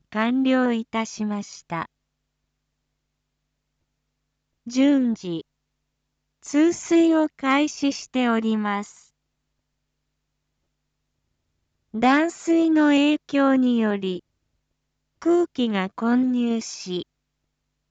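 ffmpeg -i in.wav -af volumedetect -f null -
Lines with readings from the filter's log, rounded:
mean_volume: -24.0 dB
max_volume: -9.5 dB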